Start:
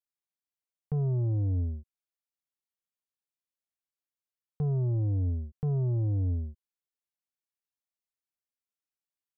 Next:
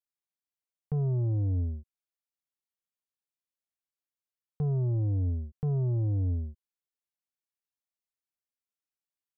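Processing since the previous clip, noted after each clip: nothing audible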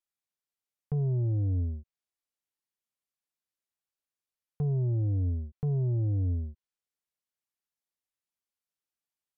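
treble ducked by the level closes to 670 Hz, closed at -27 dBFS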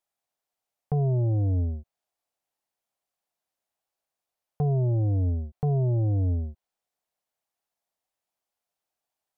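bell 710 Hz +12.5 dB 0.9 oct; gain +3.5 dB

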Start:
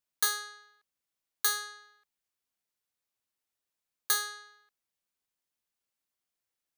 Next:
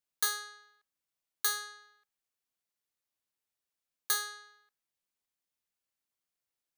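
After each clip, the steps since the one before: de-hum 116.6 Hz, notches 17; gain -2.5 dB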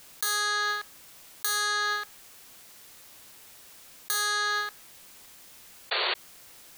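painted sound noise, 5.91–6.14, 360–4600 Hz -37 dBFS; fast leveller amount 100%; gain -1.5 dB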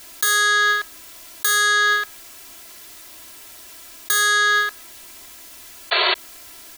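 comb 3 ms, depth 87%; gain +7 dB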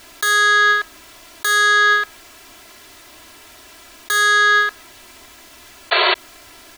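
LPF 3000 Hz 6 dB/oct; gain +5 dB

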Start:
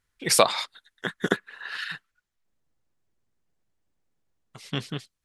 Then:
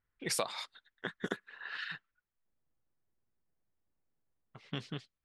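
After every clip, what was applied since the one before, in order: low-pass opened by the level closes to 2000 Hz, open at -21.5 dBFS; compressor 2.5:1, threshold -28 dBFS, peak gain reduction 11 dB; gain -6.5 dB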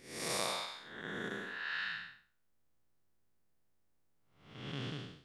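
time blur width 0.296 s; gain +7 dB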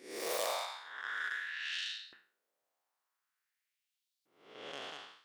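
self-modulated delay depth 0.18 ms; LFO high-pass saw up 0.47 Hz 320–4400 Hz

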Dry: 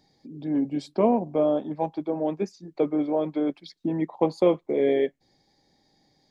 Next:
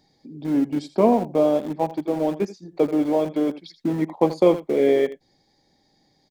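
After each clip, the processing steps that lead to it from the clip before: echo 82 ms -14 dB; in parallel at -10 dB: sample gate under -28 dBFS; on the sum: gain +1.5 dB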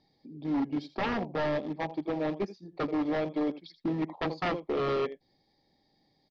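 wavefolder -17 dBFS; steep low-pass 5200 Hz 36 dB/oct; notch 1500 Hz, Q 7.2; gain -6.5 dB

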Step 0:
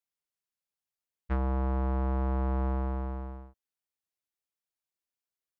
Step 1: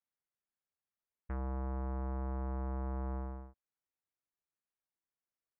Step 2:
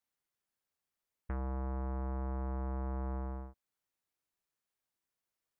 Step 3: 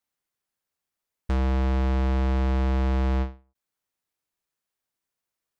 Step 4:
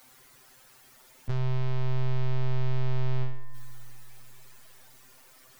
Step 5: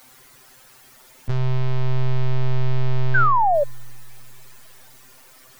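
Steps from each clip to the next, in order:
LPF 2100 Hz 24 dB/oct; limiter -30 dBFS, peak gain reduction 9 dB; gain -2 dB
compressor 3:1, threshold -41 dBFS, peak gain reduction 4 dB; gain +4.5 dB
sample leveller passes 3; ending taper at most 190 dB/s; gain +9 dB
robotiser 129 Hz; power-law curve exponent 0.5; spring tank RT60 3.2 s, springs 55 ms, chirp 75 ms, DRR 11 dB
painted sound fall, 3.14–3.64, 550–1600 Hz -24 dBFS; gain +6.5 dB

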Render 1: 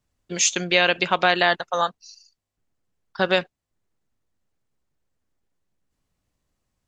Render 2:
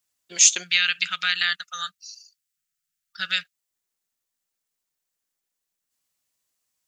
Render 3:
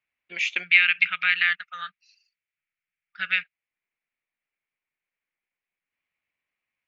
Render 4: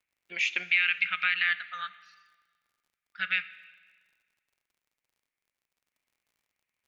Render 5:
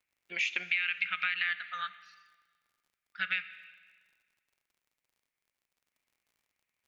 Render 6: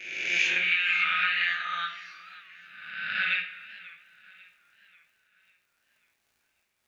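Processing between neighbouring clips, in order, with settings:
spectral gain 0.63–3.54, 210–1200 Hz -22 dB; tilt +4.5 dB/oct; gain -6.5 dB
ladder low-pass 2500 Hz, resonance 70%; gain +7.5 dB
limiter -11.5 dBFS, peak gain reduction 8 dB; crackle 61/s -58 dBFS; plate-style reverb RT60 1.5 s, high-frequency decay 0.95×, DRR 14.5 dB; gain -2 dB
compressor 3:1, threshold -28 dBFS, peak gain reduction 7 dB
spectral swells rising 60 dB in 1.23 s; non-linear reverb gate 0.15 s falling, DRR 0.5 dB; warbling echo 0.542 s, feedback 48%, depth 135 cents, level -19.5 dB

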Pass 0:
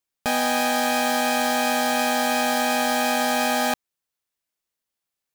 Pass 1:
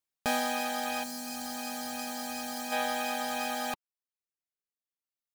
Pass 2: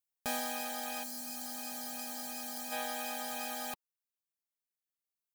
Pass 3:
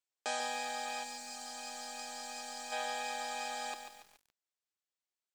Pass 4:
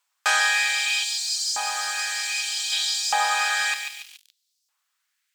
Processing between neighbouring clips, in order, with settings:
spectral gain 1.04–2.72, 280–4100 Hz -6 dB; reverb removal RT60 1.8 s; gain -5.5 dB
high shelf 7300 Hz +11 dB; gain -8 dB
Chebyshev band-pass 310–8100 Hz, order 4; lo-fi delay 0.142 s, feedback 55%, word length 9-bit, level -7 dB; gain +1 dB
sine folder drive 5 dB, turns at -20.5 dBFS; LFO high-pass saw up 0.64 Hz 960–5400 Hz; gain +8 dB

